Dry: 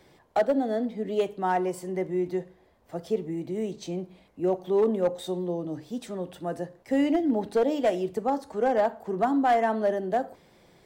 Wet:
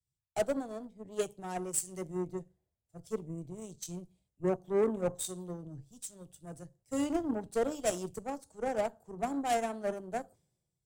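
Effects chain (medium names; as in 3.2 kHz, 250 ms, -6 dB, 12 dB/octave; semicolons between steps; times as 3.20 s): graphic EQ 125/250/500/1000/2000/4000/8000 Hz +9/-8/-5/-9/-11/-6/+11 dB; Chebyshev shaper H 3 -20 dB, 5 -32 dB, 7 -26 dB, 8 -27 dB, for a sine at -20 dBFS; three bands expanded up and down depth 100%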